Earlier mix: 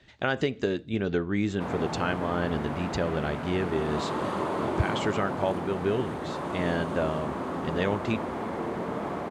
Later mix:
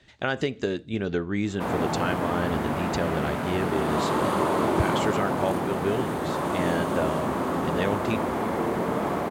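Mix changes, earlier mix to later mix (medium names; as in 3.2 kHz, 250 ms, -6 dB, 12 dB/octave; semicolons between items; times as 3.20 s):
background +5.5 dB; master: remove distance through air 51 m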